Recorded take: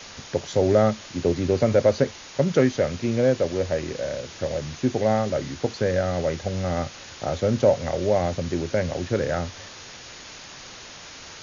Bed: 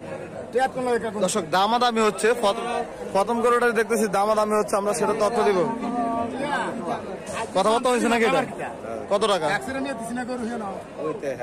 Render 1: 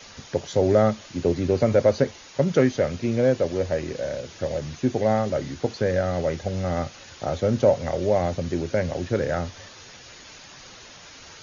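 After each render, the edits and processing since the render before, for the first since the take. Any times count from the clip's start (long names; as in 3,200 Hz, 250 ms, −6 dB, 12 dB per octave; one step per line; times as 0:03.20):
broadband denoise 6 dB, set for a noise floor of −42 dBFS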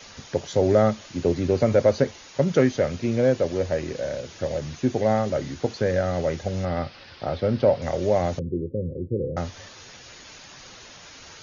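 0:06.65–0:07.82: elliptic low-pass filter 5,000 Hz, stop band 50 dB
0:08.39–0:09.37: Chebyshev low-pass with heavy ripple 520 Hz, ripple 3 dB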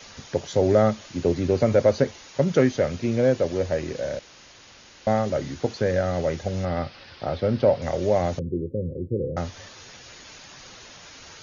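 0:04.19–0:05.07: fill with room tone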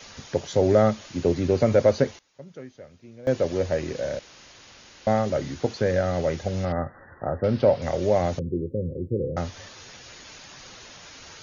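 0:01.89–0:03.57: duck −22 dB, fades 0.30 s logarithmic
0:06.72–0:07.44: linear-phase brick-wall low-pass 2,000 Hz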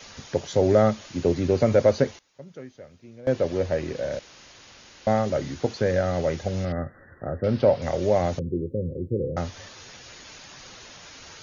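0:03.20–0:04.12: high-frequency loss of the air 61 metres
0:06.63–0:07.47: parametric band 910 Hz −11 dB 0.78 octaves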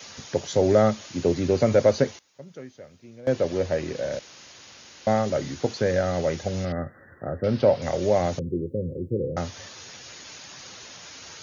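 high-pass filter 80 Hz
high-shelf EQ 5,300 Hz +6.5 dB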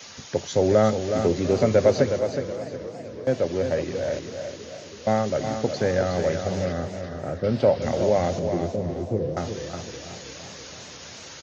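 on a send: repeating echo 366 ms, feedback 32%, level −7.5 dB
on the sum: feedback echo with a swinging delay time 328 ms, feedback 74%, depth 114 cents, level −16 dB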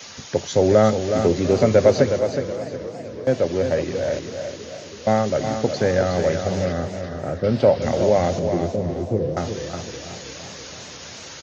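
level +3.5 dB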